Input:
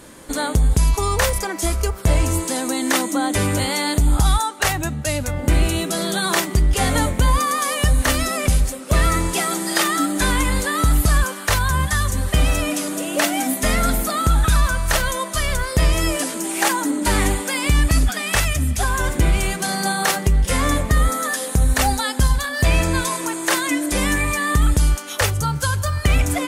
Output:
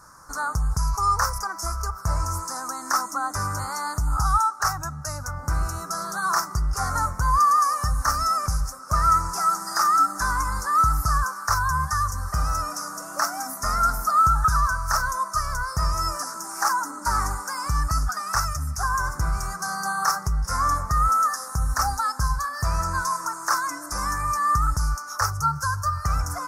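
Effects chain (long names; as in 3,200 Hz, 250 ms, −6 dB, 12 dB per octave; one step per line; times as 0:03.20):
drawn EQ curve 150 Hz 0 dB, 230 Hz −12 dB, 370 Hz −12 dB, 530 Hz −9 dB, 1,300 Hz +15 dB, 2,000 Hz −10 dB, 3,200 Hz −29 dB, 5,400 Hz +10 dB, 7,900 Hz −3 dB, 13,000 Hz 0 dB
level −8 dB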